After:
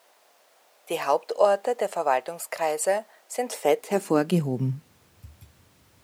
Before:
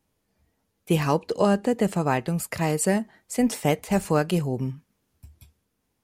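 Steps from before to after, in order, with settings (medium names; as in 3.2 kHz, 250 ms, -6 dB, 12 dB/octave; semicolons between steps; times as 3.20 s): added noise pink -57 dBFS; high-pass sweep 620 Hz -> 90 Hz, 3.44–5.03 s; trim -2.5 dB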